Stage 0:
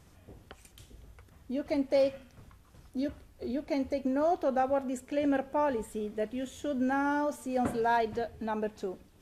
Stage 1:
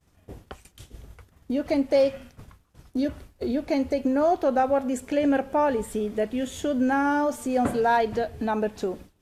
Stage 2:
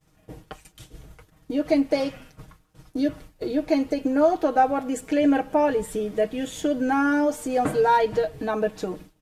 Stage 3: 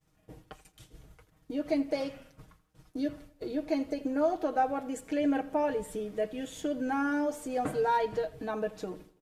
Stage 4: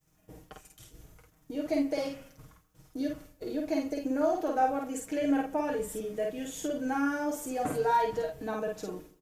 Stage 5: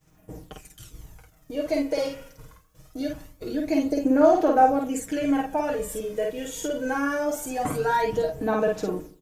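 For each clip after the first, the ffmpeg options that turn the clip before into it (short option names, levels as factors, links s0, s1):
-filter_complex "[0:a]agate=range=0.0224:threshold=0.00447:ratio=3:detection=peak,asplit=2[s0][s1];[s1]acompressor=threshold=0.0112:ratio=6,volume=1.26[s2];[s0][s2]amix=inputs=2:normalize=0,volume=1.58"
-af "aecho=1:1:6.4:0.78"
-filter_complex "[0:a]asplit=2[s0][s1];[s1]adelay=83,lowpass=f=4000:p=1,volume=0.126,asplit=2[s2][s3];[s3]adelay=83,lowpass=f=4000:p=1,volume=0.45,asplit=2[s4][s5];[s5]adelay=83,lowpass=f=4000:p=1,volume=0.45,asplit=2[s6][s7];[s7]adelay=83,lowpass=f=4000:p=1,volume=0.45[s8];[s0][s2][s4][s6][s8]amix=inputs=5:normalize=0,volume=0.376"
-filter_complex "[0:a]aexciter=amount=1.8:drive=6.2:freq=5700,asplit=2[s0][s1];[s1]adelay=50,volume=0.75[s2];[s0][s2]amix=inputs=2:normalize=0,volume=0.841"
-af "aphaser=in_gain=1:out_gain=1:delay=2.1:decay=0.47:speed=0.23:type=sinusoidal,volume=1.78"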